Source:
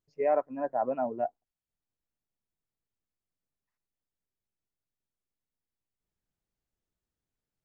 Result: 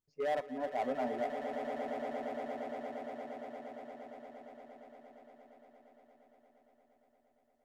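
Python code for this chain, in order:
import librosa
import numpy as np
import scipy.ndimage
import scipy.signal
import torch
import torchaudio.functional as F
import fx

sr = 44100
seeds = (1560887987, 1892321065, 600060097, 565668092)

p1 = np.clip(10.0 ** (26.0 / 20.0) * x, -1.0, 1.0) / 10.0 ** (26.0 / 20.0)
p2 = fx.comb_fb(p1, sr, f0_hz=250.0, decay_s=0.18, harmonics='odd', damping=0.0, mix_pct=60)
p3 = p2 + fx.echo_swell(p2, sr, ms=116, loudest=8, wet_db=-11, dry=0)
y = p3 * 10.0 ** (2.5 / 20.0)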